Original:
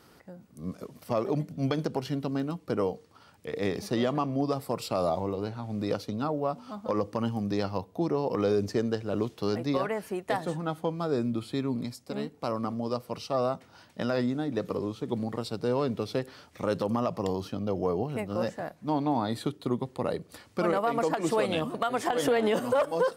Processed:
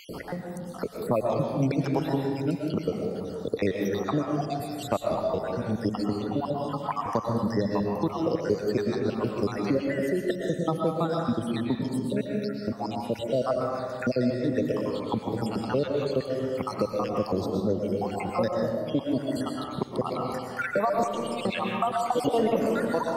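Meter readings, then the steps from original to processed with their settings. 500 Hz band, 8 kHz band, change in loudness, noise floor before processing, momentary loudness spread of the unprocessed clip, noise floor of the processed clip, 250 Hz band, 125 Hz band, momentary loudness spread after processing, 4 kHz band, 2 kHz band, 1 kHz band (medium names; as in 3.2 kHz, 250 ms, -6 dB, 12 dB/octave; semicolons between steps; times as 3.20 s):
+2.0 dB, 0.0 dB, +2.0 dB, -57 dBFS, 8 LU, -38 dBFS, +2.5 dB, +2.5 dB, 5 LU, +0.5 dB, +2.0 dB, +2.0 dB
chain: random holes in the spectrogram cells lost 68%; algorithmic reverb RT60 1.4 s, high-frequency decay 0.45×, pre-delay 80 ms, DRR 1 dB; three bands compressed up and down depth 70%; trim +4.5 dB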